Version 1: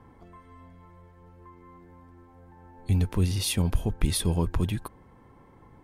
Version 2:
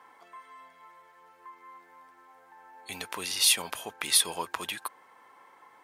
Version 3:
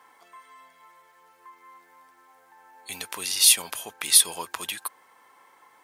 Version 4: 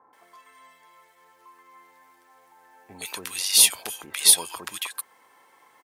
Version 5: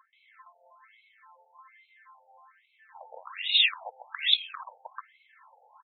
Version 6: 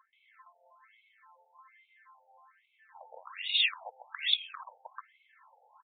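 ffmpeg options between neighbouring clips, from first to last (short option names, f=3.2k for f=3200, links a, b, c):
-af "highpass=1k,volume=7.5dB"
-af "highshelf=f=3.8k:g=10,volume=-1.5dB"
-filter_complex "[0:a]acrossover=split=1200[a][b];[b]adelay=130[c];[a][c]amix=inputs=2:normalize=0,volume=1dB"
-af "afftfilt=real='re*between(b*sr/1024,610*pow(3000/610,0.5+0.5*sin(2*PI*1.2*pts/sr))/1.41,610*pow(3000/610,0.5+0.5*sin(2*PI*1.2*pts/sr))*1.41)':imag='im*between(b*sr/1024,610*pow(3000/610,0.5+0.5*sin(2*PI*1.2*pts/sr))/1.41,610*pow(3000/610,0.5+0.5*sin(2*PI*1.2*pts/sr))*1.41)':win_size=1024:overlap=0.75,volume=4dB"
-af "aresample=8000,aresample=44100,volume=-4dB"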